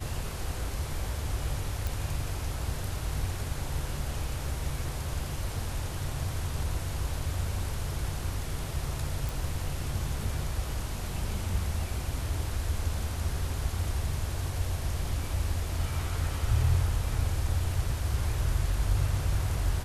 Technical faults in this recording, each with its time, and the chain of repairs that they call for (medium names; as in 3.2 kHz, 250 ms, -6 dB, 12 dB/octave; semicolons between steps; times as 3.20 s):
1.87 s: pop
9.29 s: pop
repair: de-click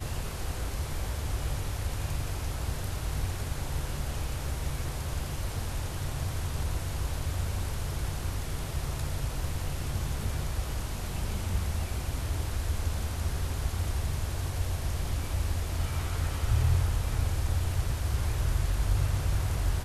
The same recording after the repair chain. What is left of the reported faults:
nothing left